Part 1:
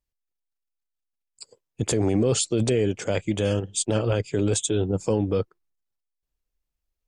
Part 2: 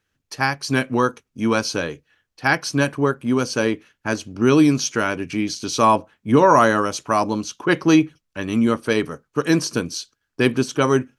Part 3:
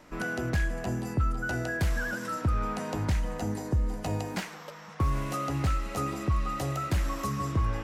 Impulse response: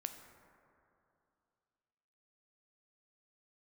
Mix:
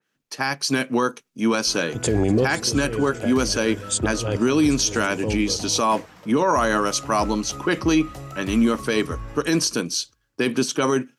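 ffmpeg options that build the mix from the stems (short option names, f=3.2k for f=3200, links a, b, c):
-filter_complex "[0:a]dynaudnorm=f=240:g=13:m=11.5dB,adelay=150,volume=-5.5dB,asplit=2[a][b];[b]volume=-20.5dB[c];[1:a]alimiter=limit=-8dB:level=0:latency=1:release=70,highpass=f=150:w=0.5412,highpass=f=150:w=1.3066,adynamicequalizer=threshold=0.0158:dfrequency=2700:dqfactor=0.7:tfrequency=2700:tqfactor=0.7:attack=5:release=100:ratio=0.375:range=2.5:mode=boostabove:tftype=highshelf,volume=0.5dB,asplit=2[d][e];[2:a]adelay=1550,volume=-5.5dB,asplit=2[f][g];[g]volume=-15.5dB[h];[e]apad=whole_len=318666[i];[a][i]sidechaincompress=threshold=-32dB:ratio=8:attack=11:release=203[j];[c][h]amix=inputs=2:normalize=0,aecho=0:1:247|494|741|988|1235:1|0.38|0.144|0.0549|0.0209[k];[j][d][f][k]amix=inputs=4:normalize=0,alimiter=limit=-10.5dB:level=0:latency=1:release=13"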